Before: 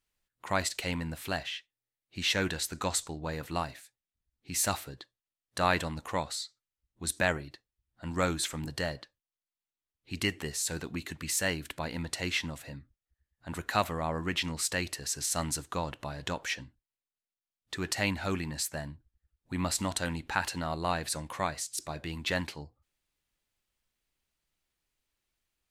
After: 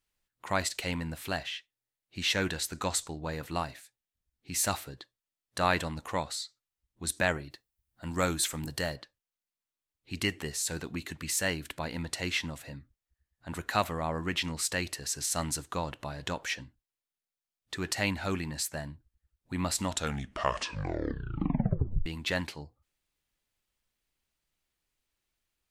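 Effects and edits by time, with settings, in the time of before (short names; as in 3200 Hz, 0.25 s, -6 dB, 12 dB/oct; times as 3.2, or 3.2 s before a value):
7.5–8.96 high shelf 9800 Hz +11.5 dB
19.82 tape stop 2.24 s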